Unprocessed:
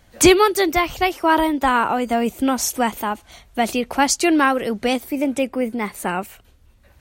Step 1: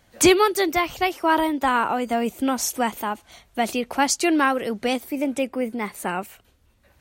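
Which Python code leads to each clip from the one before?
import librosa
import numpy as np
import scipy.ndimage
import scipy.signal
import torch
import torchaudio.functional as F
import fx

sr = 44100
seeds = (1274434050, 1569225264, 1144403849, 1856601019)

y = fx.low_shelf(x, sr, hz=73.0, db=-9.5)
y = y * librosa.db_to_amplitude(-3.0)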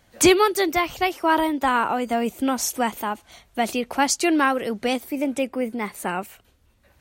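y = x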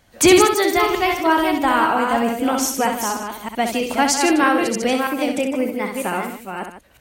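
y = fx.reverse_delay(x, sr, ms=317, wet_db=-5.0)
y = fx.echo_multitap(y, sr, ms=(65, 153), db=(-6.5, -11.5))
y = y * librosa.db_to_amplitude(2.0)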